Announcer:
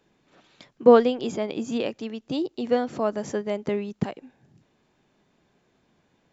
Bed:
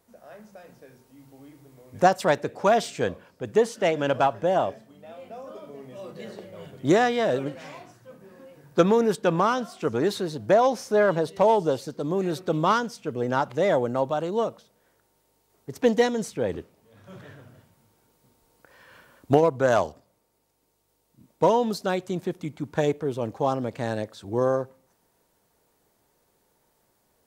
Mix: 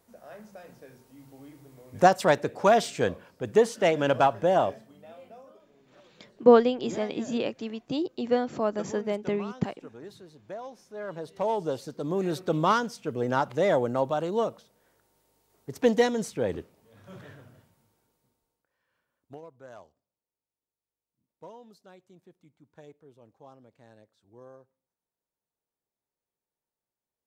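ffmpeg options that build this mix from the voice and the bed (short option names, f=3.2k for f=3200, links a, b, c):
-filter_complex "[0:a]adelay=5600,volume=-2dB[a];[1:a]volume=19dB,afade=t=out:st=4.69:d=0.97:silence=0.0944061,afade=t=in:st=10.94:d=1.4:silence=0.112202,afade=t=out:st=17.22:d=1.43:silence=0.0562341[b];[a][b]amix=inputs=2:normalize=0"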